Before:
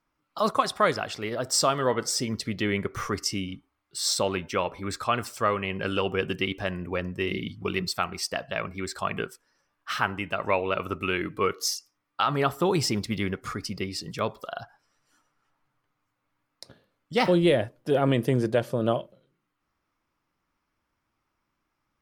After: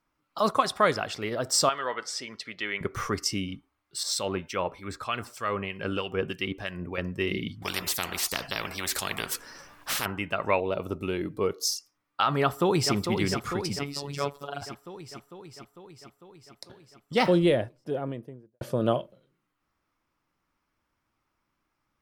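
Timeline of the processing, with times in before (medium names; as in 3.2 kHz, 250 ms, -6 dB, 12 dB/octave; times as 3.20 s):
1.69–2.81 s: band-pass filter 2 kHz, Q 0.69
4.03–6.98 s: harmonic tremolo 3.2 Hz, crossover 1.5 kHz
7.62–10.06 s: spectrum-flattening compressor 4:1
10.60–11.76 s: high-order bell 1.8 kHz -10.5 dB
12.41–12.94 s: echo throw 450 ms, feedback 70%, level -6.5 dB
13.79–14.62 s: robot voice 142 Hz
17.16–18.61 s: studio fade out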